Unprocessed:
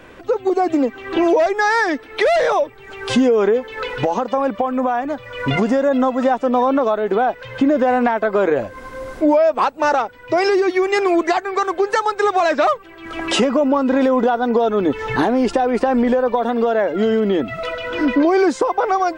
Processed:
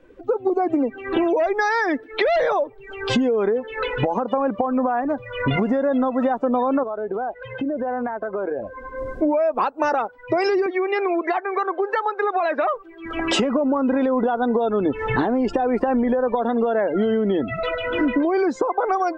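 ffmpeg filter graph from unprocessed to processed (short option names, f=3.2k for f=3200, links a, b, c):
-filter_complex "[0:a]asettb=1/sr,asplit=3[a][b][c];[a]atrim=end=6.834[d];[b]atrim=start=6.83:end=8.98,asetpts=PTS-STARTPTS,afade=t=in:d=0.004:c=qsin,afade=t=out:st=2.146:d=0.004:c=qsin,bass=f=250:g=-5,treble=f=4k:g=-8,acompressor=threshold=-28dB:ratio=2.5:attack=3.2:release=140:knee=1:detection=peak,aeval=exprs='val(0)+0.00251*(sin(2*PI*50*n/s)+sin(2*PI*2*50*n/s)/2+sin(2*PI*3*50*n/s)/3+sin(2*PI*4*50*n/s)/4+sin(2*PI*5*50*n/s)/5)':c=same[e];[c]atrim=start=8.976[f];[d][e]acrossfade=d=0.004:c1=hsin:c2=qsin[g];[g][f]acrossfade=d=0.004:c1=qsin:c2=hsin,asettb=1/sr,asplit=3[h][i][j];[h]atrim=end=10.664[k];[i]atrim=start=10.66:end=12.74,asetpts=PTS-STARTPTS,afade=t=in:d=0.004:c=qsin,afade=t=out:st=2.076:d=0.004:c=qsin,acompressor=threshold=-21dB:ratio=1.5:attack=3.2:release=140:knee=1:detection=peak,highpass=350,lowpass=3.8k[l];[j]atrim=start=12.736[m];[k][l]acrossfade=d=0.004:c1=hsin:c2=qsin[n];[n][m]acrossfade=d=0.004:c1=qsin:c2=hsin,afftdn=nr=19:nf=-32,lowshelf=f=390:g=3,acompressor=threshold=-17dB:ratio=6"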